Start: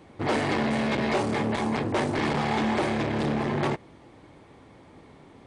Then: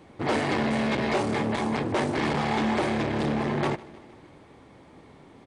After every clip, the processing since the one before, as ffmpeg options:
ffmpeg -i in.wav -af "bandreject=frequency=50:width_type=h:width=6,bandreject=frequency=100:width_type=h:width=6,aecho=1:1:154|308|462|616|770:0.0891|0.0535|0.0321|0.0193|0.0116" out.wav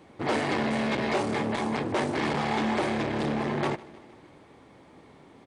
ffmpeg -i in.wav -af "lowshelf=frequency=110:gain=-6,volume=-1dB" out.wav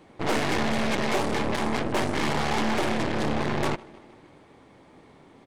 ffmpeg -i in.wav -af "aeval=exprs='0.133*(cos(1*acos(clip(val(0)/0.133,-1,1)))-cos(1*PI/2))+0.0335*(cos(6*acos(clip(val(0)/0.133,-1,1)))-cos(6*PI/2))':channel_layout=same" out.wav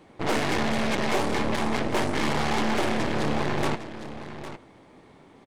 ffmpeg -i in.wav -af "aecho=1:1:807:0.251" out.wav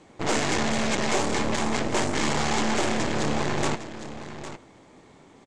ffmpeg -i in.wav -af "lowpass=frequency=7300:width_type=q:width=3.4" out.wav

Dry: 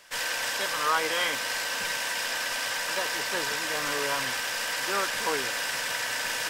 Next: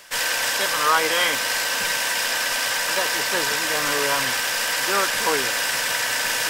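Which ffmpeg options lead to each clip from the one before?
ffmpeg -i in.wav -af "highshelf=frequency=9100:gain=5,areverse,acompressor=mode=upward:threshold=-32dB:ratio=2.5,areverse,volume=6.5dB" out.wav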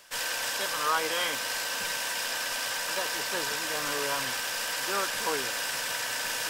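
ffmpeg -i in.wav -af "equalizer=frequency=2000:width=4:gain=-4,volume=-8dB" out.wav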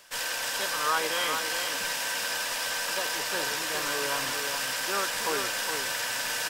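ffmpeg -i in.wav -af "aecho=1:1:414:0.501" out.wav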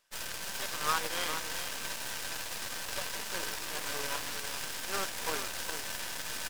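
ffmpeg -i in.wav -af "flanger=delay=0.8:depth=4.4:regen=84:speed=1.1:shape=sinusoidal,aeval=exprs='0.133*(cos(1*acos(clip(val(0)/0.133,-1,1)))-cos(1*PI/2))+0.00168*(cos(5*acos(clip(val(0)/0.133,-1,1)))-cos(5*PI/2))+0.0211*(cos(6*acos(clip(val(0)/0.133,-1,1)))-cos(6*PI/2))+0.0168*(cos(7*acos(clip(val(0)/0.133,-1,1)))-cos(7*PI/2))+0.0299*(cos(8*acos(clip(val(0)/0.133,-1,1)))-cos(8*PI/2))':channel_layout=same" out.wav

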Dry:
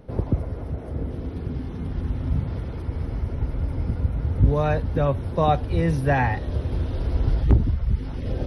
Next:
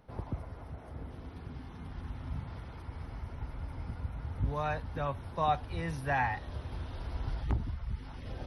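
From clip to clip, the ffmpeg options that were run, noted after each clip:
ffmpeg -i in.wav -af "lowshelf=frequency=650:width_type=q:width=1.5:gain=-7.5,volume=-7dB" out.wav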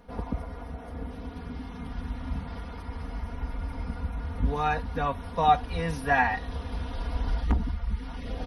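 ffmpeg -i in.wav -af "aecho=1:1:4.2:0.9,volume=5dB" out.wav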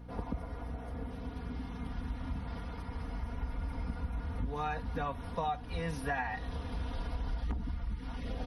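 ffmpeg -i in.wav -af "acompressor=threshold=-28dB:ratio=6,aeval=exprs='val(0)+0.00708*(sin(2*PI*60*n/s)+sin(2*PI*2*60*n/s)/2+sin(2*PI*3*60*n/s)/3+sin(2*PI*4*60*n/s)/4+sin(2*PI*5*60*n/s)/5)':channel_layout=same,volume=-3.5dB" out.wav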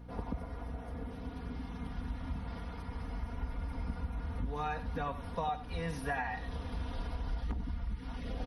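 ffmpeg -i in.wav -af "aecho=1:1:95:0.211,volume=-1dB" out.wav

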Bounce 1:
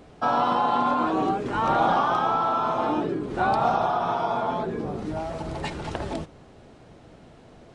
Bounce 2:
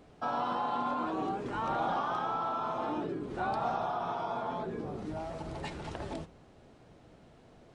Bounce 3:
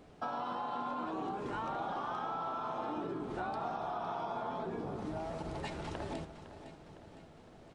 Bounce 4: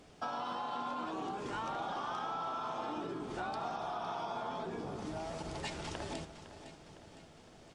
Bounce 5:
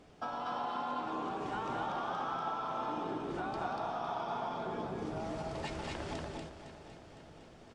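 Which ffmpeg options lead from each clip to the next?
ffmpeg -i in.wav -filter_complex "[0:a]asplit=2[link_01][link_02];[link_02]alimiter=limit=-21dB:level=0:latency=1,volume=-2dB[link_03];[link_01][link_03]amix=inputs=2:normalize=0,flanger=delay=6.6:depth=7.3:regen=-87:speed=1.3:shape=sinusoidal,volume=-8.5dB" out.wav
ffmpeg -i in.wav -filter_complex "[0:a]bandreject=frequency=60:width_type=h:width=6,bandreject=frequency=120:width_type=h:width=6,acompressor=threshold=-35dB:ratio=6,asplit=2[link_01][link_02];[link_02]aecho=0:1:508|1016|1524|2032|2540|3048:0.237|0.128|0.0691|0.0373|0.0202|0.0109[link_03];[link_01][link_03]amix=inputs=2:normalize=0" out.wav
ffmpeg -i in.wav -af "equalizer=frequency=6200:width_type=o:width=2.5:gain=10.5,bandreject=frequency=4000:width=17,volume=-2dB" out.wav
ffmpeg -i in.wav -af "highshelf=frequency=3900:gain=-8,aecho=1:1:183.7|239.1:0.251|0.794" out.wav

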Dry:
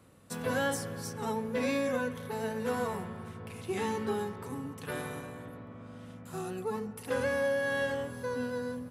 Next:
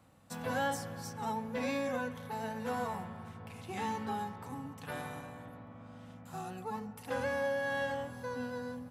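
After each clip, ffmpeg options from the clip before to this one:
ffmpeg -i in.wav -af "equalizer=frequency=400:width_type=o:width=0.33:gain=-11,equalizer=frequency=800:width_type=o:width=0.33:gain=8,equalizer=frequency=10000:width_type=o:width=0.33:gain=-6,volume=-3.5dB" out.wav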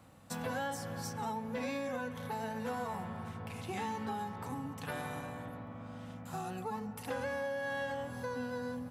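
ffmpeg -i in.wav -af "acompressor=threshold=-41dB:ratio=3,volume=4.5dB" out.wav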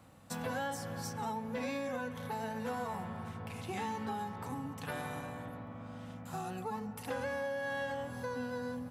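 ffmpeg -i in.wav -af anull out.wav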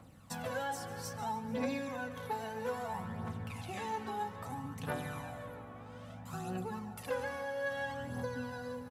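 ffmpeg -i in.wav -af "aphaser=in_gain=1:out_gain=1:delay=2.8:decay=0.52:speed=0.61:type=triangular,aecho=1:1:148|296|444|592|740|888:0.168|0.101|0.0604|0.0363|0.0218|0.0131,volume=-2dB" out.wav

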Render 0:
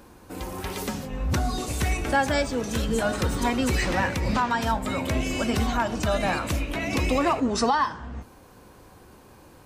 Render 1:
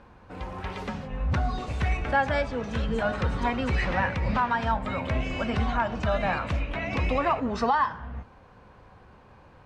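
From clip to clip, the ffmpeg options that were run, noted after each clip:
ffmpeg -i in.wav -af "lowpass=2600,equalizer=frequency=320:width_type=o:width=0.81:gain=-9" out.wav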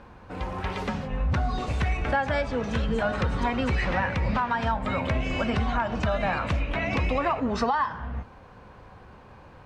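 ffmpeg -i in.wav -af "acompressor=threshold=-26dB:ratio=4,volume=4dB" out.wav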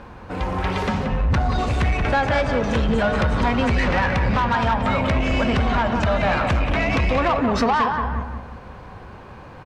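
ffmpeg -i in.wav -filter_complex "[0:a]asplit=2[link_01][link_02];[link_02]adelay=180,lowpass=frequency=2700:poles=1,volume=-6.5dB,asplit=2[link_03][link_04];[link_04]adelay=180,lowpass=frequency=2700:poles=1,volume=0.39,asplit=2[link_05][link_06];[link_06]adelay=180,lowpass=frequency=2700:poles=1,volume=0.39,asplit=2[link_07][link_08];[link_08]adelay=180,lowpass=frequency=2700:poles=1,volume=0.39,asplit=2[link_09][link_10];[link_10]adelay=180,lowpass=frequency=2700:poles=1,volume=0.39[link_11];[link_01][link_03][link_05][link_07][link_09][link_11]amix=inputs=6:normalize=0,asoftclip=type=tanh:threshold=-21.5dB,volume=8dB" out.wav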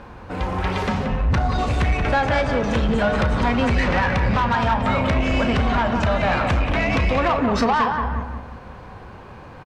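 ffmpeg -i in.wav -filter_complex "[0:a]asplit=2[link_01][link_02];[link_02]adelay=34,volume=-13dB[link_03];[link_01][link_03]amix=inputs=2:normalize=0" out.wav

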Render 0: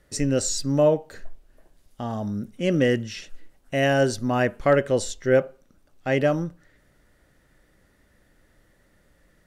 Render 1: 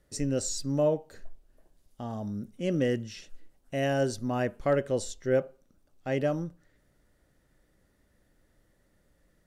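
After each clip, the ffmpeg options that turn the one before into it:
ffmpeg -i in.wav -af "equalizer=frequency=1900:width_type=o:width=1.9:gain=-4.5,volume=-6dB" out.wav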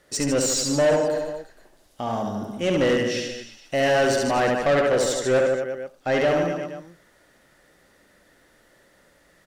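ffmpeg -i in.wav -filter_complex "[0:a]aecho=1:1:70|150.5|243.1|349.5|472:0.631|0.398|0.251|0.158|0.1,asplit=2[link_01][link_02];[link_02]highpass=frequency=720:poles=1,volume=21dB,asoftclip=type=tanh:threshold=-11.5dB[link_03];[link_01][link_03]amix=inputs=2:normalize=0,lowpass=frequency=5600:poles=1,volume=-6dB" out.wav

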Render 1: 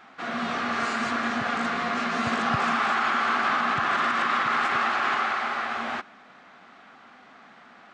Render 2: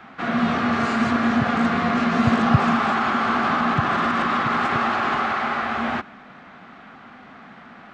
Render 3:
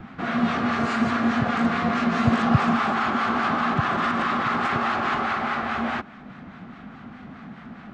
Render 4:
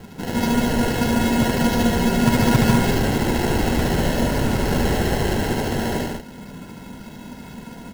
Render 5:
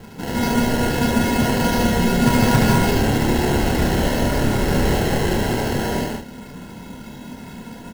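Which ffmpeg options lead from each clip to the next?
ffmpeg -i in.wav -filter_complex "[0:a]bass=frequency=250:gain=10,treble=frequency=4000:gain=-8,acrossover=split=110|1100|3300[link_01][link_02][link_03][link_04];[link_03]alimiter=level_in=4.5dB:limit=-24dB:level=0:latency=1,volume=-4.5dB[link_05];[link_01][link_02][link_05][link_04]amix=inputs=4:normalize=0,volume=6dB" out.wav
ffmpeg -i in.wav -filter_complex "[0:a]acrossover=split=870[link_01][link_02];[link_01]aeval=exprs='val(0)*(1-0.5/2+0.5/2*cos(2*PI*4.8*n/s))':channel_layout=same[link_03];[link_02]aeval=exprs='val(0)*(1-0.5/2-0.5/2*cos(2*PI*4.8*n/s))':channel_layout=same[link_04];[link_03][link_04]amix=inputs=2:normalize=0,acrossover=split=260|1900[link_05][link_06][link_07];[link_05]acompressor=mode=upward:threshold=-30dB:ratio=2.5[link_08];[link_08][link_06][link_07]amix=inputs=3:normalize=0" out.wav
ffmpeg -i in.wav -af "acrusher=samples=37:mix=1:aa=0.000001,aecho=1:1:72.89|148.7|198.3:0.794|0.794|0.631" out.wav
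ffmpeg -i in.wav -filter_complex "[0:a]asplit=2[link_01][link_02];[link_02]adelay=28,volume=-4dB[link_03];[link_01][link_03]amix=inputs=2:normalize=0" out.wav

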